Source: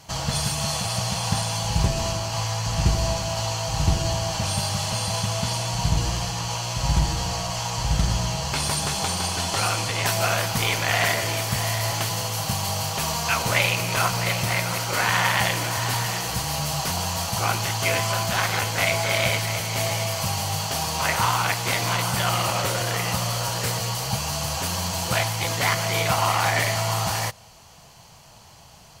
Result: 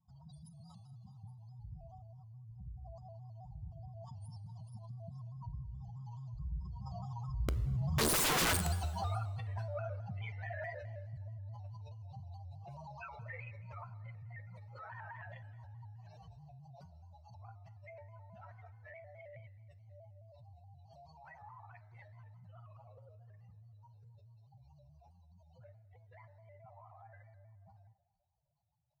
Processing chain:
expanding power law on the bin magnitudes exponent 3.5
source passing by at 0:08.25, 22 m/s, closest 1.5 metres
in parallel at −1 dB: downward compressor 16 to 1, threshold −59 dBFS, peak gain reduction 34 dB
on the sum: wrap-around overflow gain 34 dB
on a send at −10.5 dB: convolution reverb RT60 1.3 s, pre-delay 11 ms
on the sum: pitch modulation by a square or saw wave square 4.7 Hz, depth 100 cents
level +8 dB

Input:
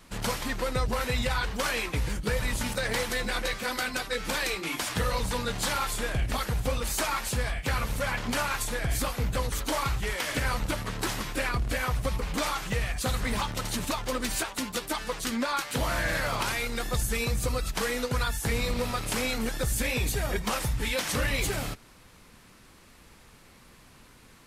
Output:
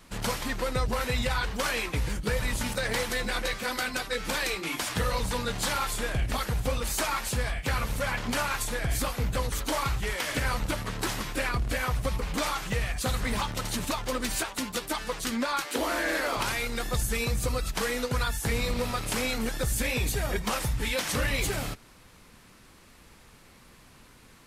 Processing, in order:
0:15.65–0:16.37: low shelf with overshoot 210 Hz −13.5 dB, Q 3

